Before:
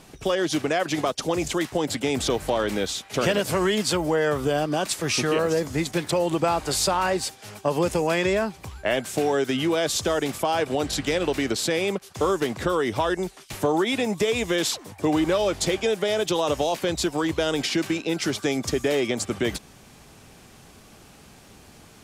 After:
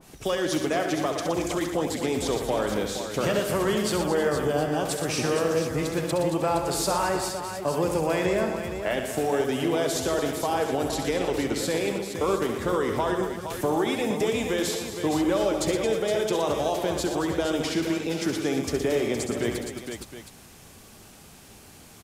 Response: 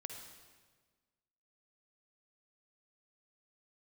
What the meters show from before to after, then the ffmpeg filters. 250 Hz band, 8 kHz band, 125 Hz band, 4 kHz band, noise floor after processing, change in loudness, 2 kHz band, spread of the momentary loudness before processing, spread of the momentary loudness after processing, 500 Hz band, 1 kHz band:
-1.0 dB, -3.0 dB, -1.0 dB, -5.0 dB, -49 dBFS, -2.0 dB, -3.5 dB, 4 LU, 4 LU, -1.0 dB, -1.5 dB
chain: -af "acontrast=41,highshelf=f=8.2k:g=9,aecho=1:1:67|118|223|314|466|717:0.398|0.376|0.282|0.158|0.376|0.178,adynamicequalizer=threshold=0.0251:dfrequency=1900:dqfactor=0.7:tfrequency=1900:tqfactor=0.7:attack=5:release=100:ratio=0.375:range=3:mode=cutabove:tftype=highshelf,volume=-8.5dB"

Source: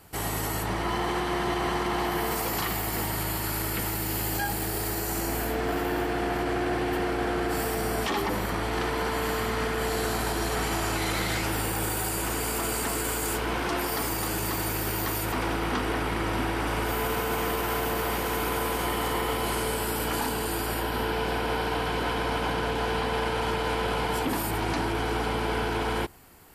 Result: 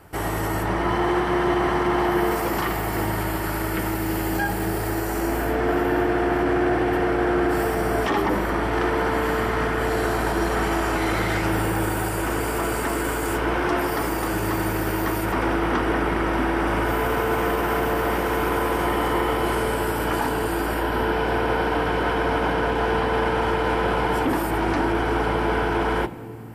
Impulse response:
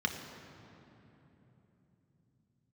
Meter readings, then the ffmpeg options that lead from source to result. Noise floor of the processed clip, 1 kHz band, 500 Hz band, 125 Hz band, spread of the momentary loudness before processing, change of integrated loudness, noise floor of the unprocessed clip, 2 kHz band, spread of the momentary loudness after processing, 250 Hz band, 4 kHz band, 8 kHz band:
-26 dBFS, +5.5 dB, +6.5 dB, +4.5 dB, 1 LU, +5.0 dB, -30 dBFS, +5.5 dB, 3 LU, +7.5 dB, -1.0 dB, -3.5 dB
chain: -filter_complex "[0:a]highshelf=f=2.6k:g=-9.5,asplit=2[a][b];[1:a]atrim=start_sample=2205,asetrate=57330,aresample=44100[c];[b][c]afir=irnorm=-1:irlink=0,volume=-13.5dB[d];[a][d]amix=inputs=2:normalize=0,volume=6.5dB"

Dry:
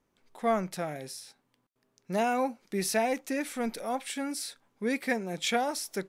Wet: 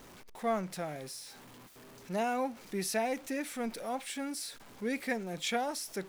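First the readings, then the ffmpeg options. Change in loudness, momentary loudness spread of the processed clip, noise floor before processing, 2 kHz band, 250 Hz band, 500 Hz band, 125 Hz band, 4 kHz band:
-4.5 dB, 17 LU, -76 dBFS, -4.5 dB, -4.0 dB, -4.5 dB, -3.5 dB, -3.5 dB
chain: -af "aeval=exprs='val(0)+0.5*0.0075*sgn(val(0))':c=same,volume=-5dB"

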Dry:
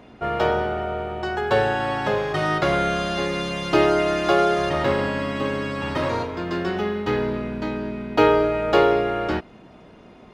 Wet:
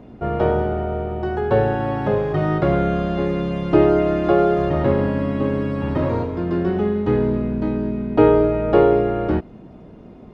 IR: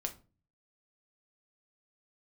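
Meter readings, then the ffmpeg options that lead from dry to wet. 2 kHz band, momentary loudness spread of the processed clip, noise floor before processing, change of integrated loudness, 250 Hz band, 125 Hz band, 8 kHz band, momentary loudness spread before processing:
-6.0 dB, 8 LU, -47 dBFS, +3.0 dB, +6.0 dB, +8.0 dB, under -15 dB, 9 LU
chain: -filter_complex "[0:a]tiltshelf=f=730:g=8.5,acrossover=split=3500[a][b];[b]acompressor=threshold=-58dB:ratio=4:attack=1:release=60[c];[a][c]amix=inputs=2:normalize=0"

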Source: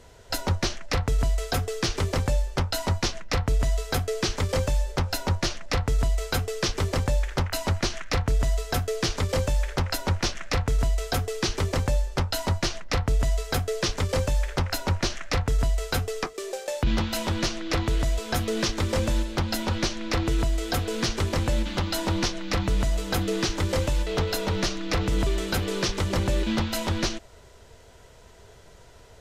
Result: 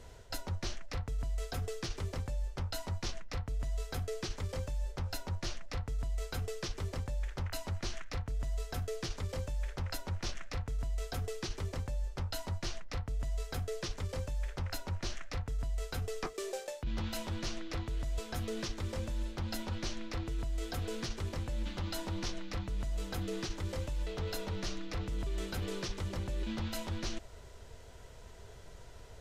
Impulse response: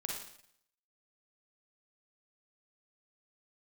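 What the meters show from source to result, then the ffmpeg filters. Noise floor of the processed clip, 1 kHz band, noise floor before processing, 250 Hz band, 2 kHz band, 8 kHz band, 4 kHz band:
-51 dBFS, -14.5 dB, -50 dBFS, -13.0 dB, -14.0 dB, -13.0 dB, -13.5 dB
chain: -af "lowshelf=f=96:g=6.5,areverse,acompressor=threshold=-30dB:ratio=6,areverse,volume=-4dB"

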